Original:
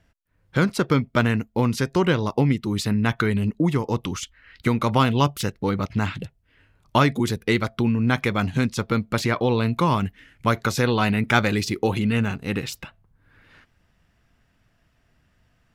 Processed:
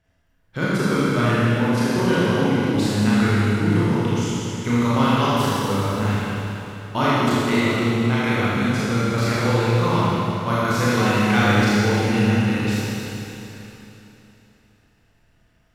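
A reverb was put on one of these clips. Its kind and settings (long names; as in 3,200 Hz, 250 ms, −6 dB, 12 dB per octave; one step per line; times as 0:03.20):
four-comb reverb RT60 3.2 s, combs from 26 ms, DRR −10 dB
level −7.5 dB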